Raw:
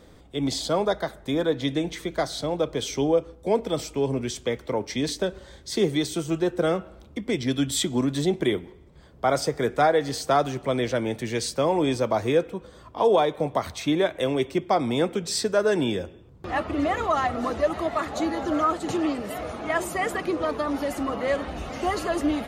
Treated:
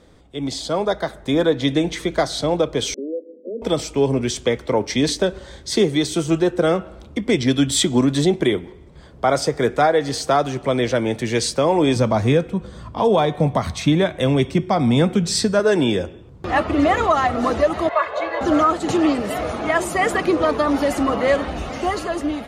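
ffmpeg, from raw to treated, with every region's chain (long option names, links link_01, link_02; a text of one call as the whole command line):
ffmpeg -i in.wav -filter_complex "[0:a]asettb=1/sr,asplit=3[link_01][link_02][link_03];[link_01]atrim=end=2.944[link_04];[link_02]atrim=start=2.94:end=3.62,asetpts=PTS-STARTPTS,afade=type=in:duration=0.004:curve=qsin,afade=type=out:start_time=0.676:duration=0.004:curve=qsin,acompressor=threshold=-43dB:ratio=2:attack=3.2:release=140:knee=1:detection=peak,asuperpass=centerf=350:order=20:qfactor=0.89[link_05];[link_03]atrim=start=3.616[link_06];[link_04][link_05]acrossfade=duration=0.004:curve1=hsin:curve2=qsin[link_07];[link_07][link_06]acrossfade=duration=0.004:curve1=qsin:curve2=hsin,asettb=1/sr,asplit=3[link_08][link_09][link_10];[link_08]atrim=end=11.964[link_11];[link_09]atrim=start=11.96:end=15.6,asetpts=PTS-STARTPTS,afade=type=in:duration=0.004:curve=qsin,afade=type=out:start_time=3.636:duration=0.004:curve=qsin,lowshelf=frequency=260:width_type=q:width=1.5:gain=7,bandreject=frequency=366.9:width_type=h:width=4,bandreject=frequency=733.8:width_type=h:width=4,bandreject=frequency=1100.7:width_type=h:width=4,bandreject=frequency=1467.6:width_type=h:width=4,bandreject=frequency=1834.5:width_type=h:width=4,bandreject=frequency=2201.4:width_type=h:width=4,bandreject=frequency=2568.3:width_type=h:width=4,bandreject=frequency=2935.2:width_type=h:width=4,bandreject=frequency=3302.1:width_type=h:width=4,bandreject=frequency=3669:width_type=h:width=4,bandreject=frequency=4035.9:width_type=h:width=4,bandreject=frequency=4402.8:width_type=h:width=4,bandreject=frequency=4769.7:width_type=h:width=4,bandreject=frequency=5136.6:width_type=h:width=4,bandreject=frequency=5503.5:width_type=h:width=4,bandreject=frequency=5870.4:width_type=h:width=4,bandreject=frequency=6237.3:width_type=h:width=4,bandreject=frequency=6604.2:width_type=h:width=4,bandreject=frequency=6971.1:width_type=h:width=4,bandreject=frequency=7338:width_type=h:width=4,bandreject=frequency=7704.9:width_type=h:width=4,bandreject=frequency=8071.8:width_type=h:width=4,bandreject=frequency=8438.7:width_type=h:width=4,bandreject=frequency=8805.6:width_type=h:width=4,bandreject=frequency=9172.5:width_type=h:width=4,bandreject=frequency=9539.4:width_type=h:width=4,bandreject=frequency=9906.3:width_type=h:width=4,bandreject=frequency=10273.2:width_type=h:width=4,bandreject=frequency=10640.1:width_type=h:width=4,bandreject=frequency=11007:width_type=h:width=4,bandreject=frequency=11373.9:width_type=h:width=4,bandreject=frequency=11740.8:width_type=h:width=4,bandreject=frequency=12107.7:width_type=h:width=4,bandreject=frequency=12474.6:width_type=h:width=4,bandreject=frequency=12841.5:width_type=h:width=4,bandreject=frequency=13208.4:width_type=h:width=4,bandreject=frequency=13575.3:width_type=h:width=4,bandreject=frequency=13942.2:width_type=h:width=4[link_12];[link_10]atrim=start=15.596[link_13];[link_11][link_12]acrossfade=duration=0.004:curve1=hsin:curve2=qsin[link_14];[link_14][link_13]acrossfade=duration=0.004:curve1=qsin:curve2=hsin,asettb=1/sr,asplit=3[link_15][link_16][link_17];[link_15]atrim=end=17.894[link_18];[link_16]atrim=start=17.89:end=18.41,asetpts=PTS-STARTPTS,afade=type=in:duration=0.004:curve=qsin,afade=type=out:start_time=0.516:duration=0.004:curve=qsin,acrossover=split=480 3200:gain=0.0794 1 0.0708[link_19][link_20][link_21];[link_19][link_20][link_21]amix=inputs=3:normalize=0,aecho=1:1:1.9:0.82,atrim=end_sample=22932[link_22];[link_17]atrim=start=18.406[link_23];[link_18][link_22]acrossfade=duration=0.004:curve1=hsin:curve2=qsin[link_24];[link_24][link_23]acrossfade=duration=0.004:curve1=qsin:curve2=hsin,lowpass=11000,dynaudnorm=framelen=240:gausssize=9:maxgain=9dB,alimiter=limit=-7dB:level=0:latency=1:release=418" out.wav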